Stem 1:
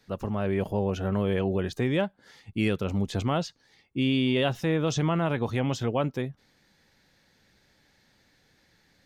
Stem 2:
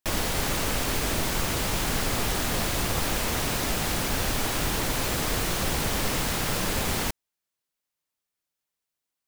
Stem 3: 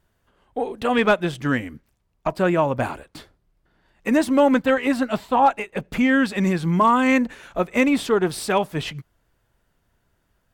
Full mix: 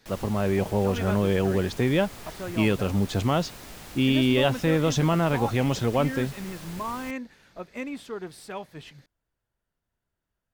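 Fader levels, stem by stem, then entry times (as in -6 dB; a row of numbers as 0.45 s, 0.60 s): +3.0 dB, -16.0 dB, -16.0 dB; 0.00 s, 0.00 s, 0.00 s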